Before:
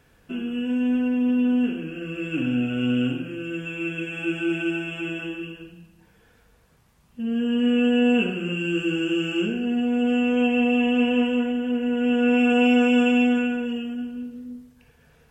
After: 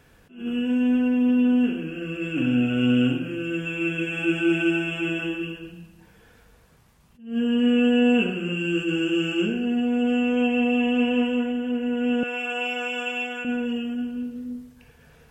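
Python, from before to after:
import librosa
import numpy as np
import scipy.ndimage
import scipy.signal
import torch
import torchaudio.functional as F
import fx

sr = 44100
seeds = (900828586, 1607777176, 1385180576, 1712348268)

y = fx.rider(x, sr, range_db=4, speed_s=2.0)
y = fx.highpass(y, sr, hz=730.0, slope=12, at=(12.23, 13.45))
y = fx.attack_slew(y, sr, db_per_s=150.0)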